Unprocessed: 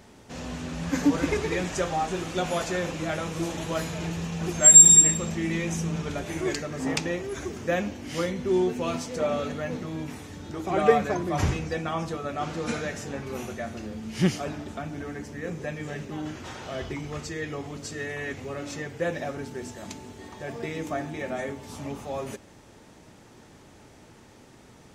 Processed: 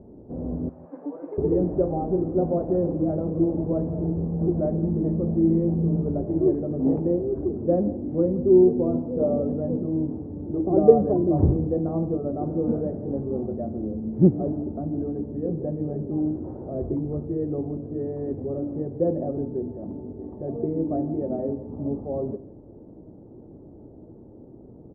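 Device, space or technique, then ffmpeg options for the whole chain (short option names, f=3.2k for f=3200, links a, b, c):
under water: -filter_complex "[0:a]lowpass=f=590:w=0.5412,lowpass=f=590:w=1.3066,equalizer=f=320:t=o:w=0.51:g=5,asettb=1/sr,asplit=3[a][b][c];[a]atrim=end=0.694[d];[b]atrim=start=0.69:end=1.38,asetpts=PTS-STARTPTS,afade=t=in:d=0.004:c=qsin,afade=t=out:st=0.686:d=0.004:c=qsin,highpass=960[e];[c]atrim=start=1.376[f];[d][e]acrossfade=d=0.004:c1=hsin:c2=qsin[g];[g][f]acrossfade=d=0.004:c1=qsin:c2=hsin,aecho=1:1:163:0.141,volume=5.5dB"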